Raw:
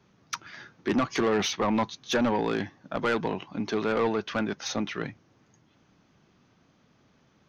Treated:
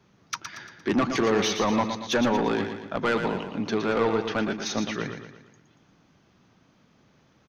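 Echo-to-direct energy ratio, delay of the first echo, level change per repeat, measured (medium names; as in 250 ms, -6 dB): -6.5 dB, 116 ms, -6.5 dB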